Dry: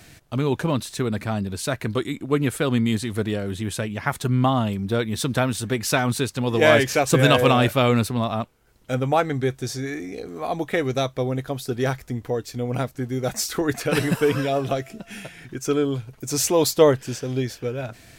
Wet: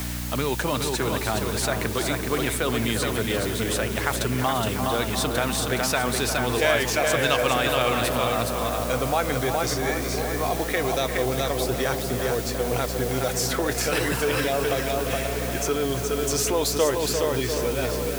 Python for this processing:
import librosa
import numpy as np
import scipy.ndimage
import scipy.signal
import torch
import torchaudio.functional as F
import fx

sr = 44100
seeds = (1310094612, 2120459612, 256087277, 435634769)

p1 = scipy.signal.sosfilt(scipy.signal.butter(2, 100.0, 'highpass', fs=sr, output='sos'), x)
p2 = fx.peak_eq(p1, sr, hz=180.0, db=-12.5, octaves=1.8)
p3 = p2 + 10.0 ** (-6.5 / 20.0) * np.pad(p2, (int(418 * sr / 1000.0), 0))[:len(p2)]
p4 = fx.add_hum(p3, sr, base_hz=60, snr_db=11)
p5 = fx.over_compress(p4, sr, threshold_db=-29.0, ratio=-1.0)
p6 = p4 + (p5 * 10.0 ** (-2.0 / 20.0))
p7 = fx.quant_dither(p6, sr, seeds[0], bits=6, dither='triangular')
p8 = p7 + fx.echo_tape(p7, sr, ms=348, feedback_pct=87, wet_db=-8, lp_hz=2000.0, drive_db=6.0, wow_cents=32, dry=0)
p9 = fx.band_squash(p8, sr, depth_pct=40)
y = p9 * 10.0 ** (-3.0 / 20.0)